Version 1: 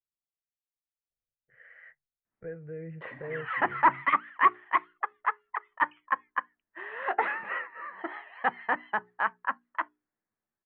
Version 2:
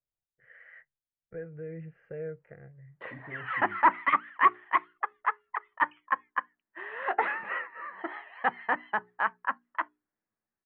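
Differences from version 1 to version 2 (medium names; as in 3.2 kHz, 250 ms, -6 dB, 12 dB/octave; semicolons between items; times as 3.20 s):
first voice: entry -1.10 s; second voice +5.0 dB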